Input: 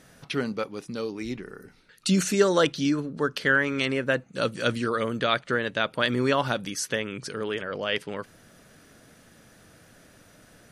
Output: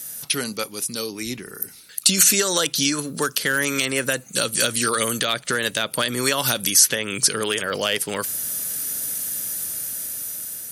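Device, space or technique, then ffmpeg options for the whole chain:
FM broadcast chain: -filter_complex "[0:a]highpass=56,dynaudnorm=framelen=940:gausssize=5:maxgain=11.5dB,acrossover=split=560|1600|4200[link_01][link_02][link_03][link_04];[link_01]acompressor=threshold=-25dB:ratio=4[link_05];[link_02]acompressor=threshold=-26dB:ratio=4[link_06];[link_03]acompressor=threshold=-31dB:ratio=4[link_07];[link_04]acompressor=threshold=-42dB:ratio=4[link_08];[link_05][link_06][link_07][link_08]amix=inputs=4:normalize=0,aemphasis=mode=production:type=75fm,alimiter=limit=-12dB:level=0:latency=1:release=174,asoftclip=type=hard:threshold=-14dB,lowpass=frequency=15000:width=0.5412,lowpass=frequency=15000:width=1.3066,aemphasis=mode=production:type=75fm,asettb=1/sr,asplit=3[link_09][link_10][link_11];[link_09]atrim=end=1.064[link_12];[link_10]atrim=start=1.06:end=1.55,asetpts=PTS-STARTPTS,afade=type=in:duration=0.004:curve=qsin,afade=type=out:start_time=0.486:duration=0.004:curve=qsin,bass=frequency=250:gain=2,treble=frequency=4000:gain=-5[link_13];[link_11]atrim=start=1.546[link_14];[link_12][link_13]acrossfade=duration=0.004:curve1=hsin:curve2=qsin[link_15];[link_15][link_14]acrossfade=duration=0.004:curve1=qsin:curve2=hsin,volume=1.5dB"

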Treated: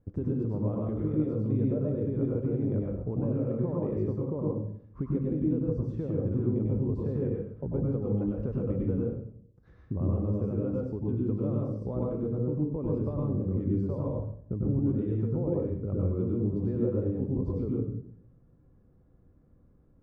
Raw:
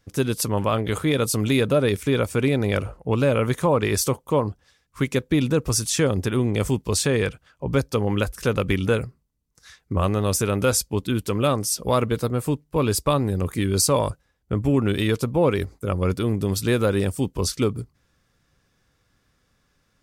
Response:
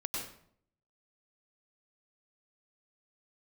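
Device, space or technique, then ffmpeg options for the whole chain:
television next door: -filter_complex "[0:a]acompressor=threshold=-33dB:ratio=5,lowpass=460[link_01];[1:a]atrim=start_sample=2205[link_02];[link_01][link_02]afir=irnorm=-1:irlink=0,volume=4dB"

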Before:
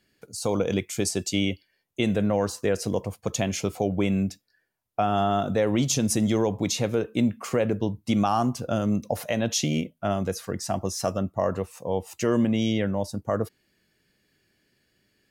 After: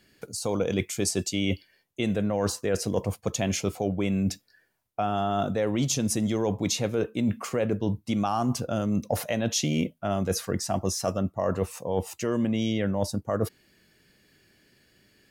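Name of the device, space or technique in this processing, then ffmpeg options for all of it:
compression on the reversed sound: -af "areverse,acompressor=threshold=-30dB:ratio=6,areverse,volume=7dB"

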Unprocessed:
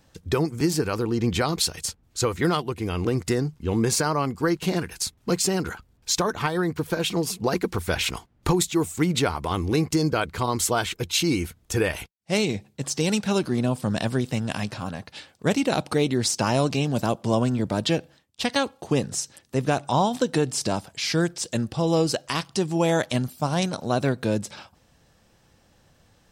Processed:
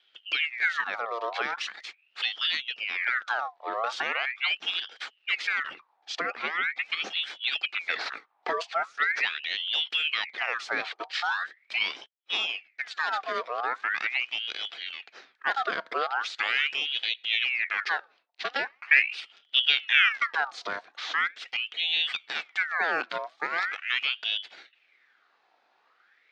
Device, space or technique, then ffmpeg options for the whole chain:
voice changer toy: -filter_complex "[0:a]asettb=1/sr,asplit=3[link_01][link_02][link_03];[link_01]atrim=end=18.874[link_04];[link_02]atrim=start=18.87:end=20.09,asetpts=PTS-STARTPTS,afade=type=in:duration=0.004:curve=qsin,afade=type=out:start_time=1.216:duration=0.004:curve=qsin,lowshelf=frequency=470:gain=9[link_05];[link_03]atrim=start=20.086[link_06];[link_04][link_05]acrossfade=duration=0.004:curve1=hsin:curve2=qsin[link_07];[link_07][link_06]acrossfade=duration=0.004:curve1=qsin:curve2=hsin,aeval=exprs='val(0)*sin(2*PI*2000*n/s+2000*0.6/0.41*sin(2*PI*0.41*n/s))':channel_layout=same,highpass=510,equalizer=frequency=590:width_type=q:width=4:gain=-5,equalizer=frequency=1000:width_type=q:width=4:gain=-9,equalizer=frequency=2900:width_type=q:width=4:gain=-4,lowpass=frequency=3900:width=0.5412,lowpass=frequency=3900:width=1.3066"

